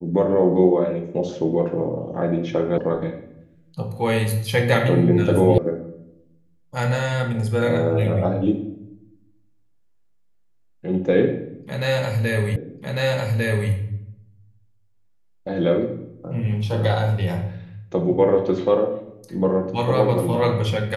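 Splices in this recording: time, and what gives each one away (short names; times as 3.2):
2.78 sound cut off
5.58 sound cut off
12.56 repeat of the last 1.15 s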